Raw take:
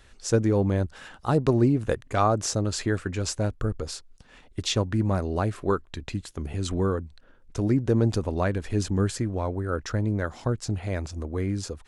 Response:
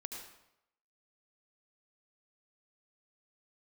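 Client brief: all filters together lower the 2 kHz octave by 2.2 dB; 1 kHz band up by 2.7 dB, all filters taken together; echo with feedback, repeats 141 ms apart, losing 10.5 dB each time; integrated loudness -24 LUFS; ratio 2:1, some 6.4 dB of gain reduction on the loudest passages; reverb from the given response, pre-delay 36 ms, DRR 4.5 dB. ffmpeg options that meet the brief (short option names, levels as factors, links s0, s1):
-filter_complex "[0:a]equalizer=f=1000:t=o:g=5,equalizer=f=2000:t=o:g=-5.5,acompressor=threshold=0.0447:ratio=2,aecho=1:1:141|282|423:0.299|0.0896|0.0269,asplit=2[s0][s1];[1:a]atrim=start_sample=2205,adelay=36[s2];[s1][s2]afir=irnorm=-1:irlink=0,volume=0.75[s3];[s0][s3]amix=inputs=2:normalize=0,volume=1.78"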